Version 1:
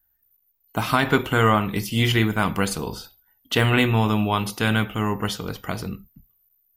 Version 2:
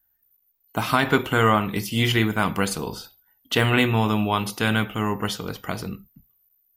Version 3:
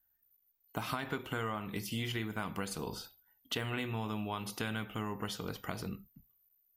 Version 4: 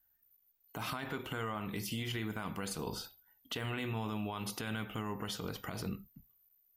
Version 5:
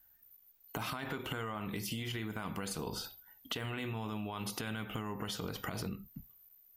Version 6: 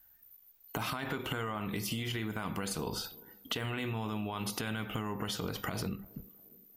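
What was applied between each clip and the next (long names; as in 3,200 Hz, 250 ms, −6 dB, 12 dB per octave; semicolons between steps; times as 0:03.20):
low-shelf EQ 66 Hz −8.5 dB
downward compressor 6 to 1, threshold −27 dBFS, peak gain reduction 13 dB; level −7 dB
brickwall limiter −30.5 dBFS, peak gain reduction 10 dB; level +2 dB
downward compressor 10 to 1, threshold −44 dBFS, peak gain reduction 11 dB; level +8.5 dB
feedback echo with a band-pass in the loop 352 ms, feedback 57%, band-pass 340 Hz, level −20 dB; level +3 dB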